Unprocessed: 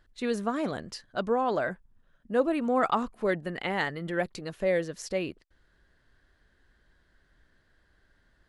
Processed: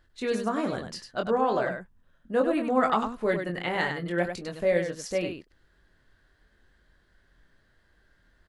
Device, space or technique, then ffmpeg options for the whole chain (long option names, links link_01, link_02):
slapback doubling: -filter_complex "[0:a]asplit=3[link_01][link_02][link_03];[link_02]adelay=23,volume=-5.5dB[link_04];[link_03]adelay=99,volume=-6.5dB[link_05];[link_01][link_04][link_05]amix=inputs=3:normalize=0"